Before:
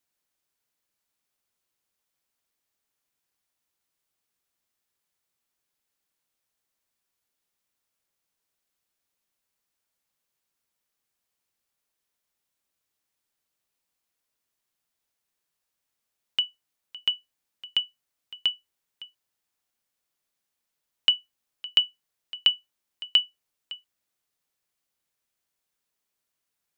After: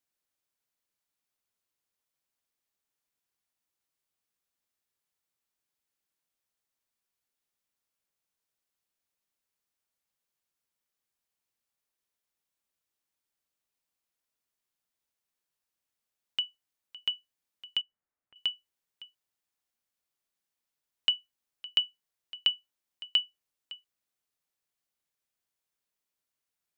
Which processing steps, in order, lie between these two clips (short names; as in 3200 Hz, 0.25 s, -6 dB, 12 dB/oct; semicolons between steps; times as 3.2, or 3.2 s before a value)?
17.81–18.36 LPF 1900 Hz 24 dB/oct; gain -5.5 dB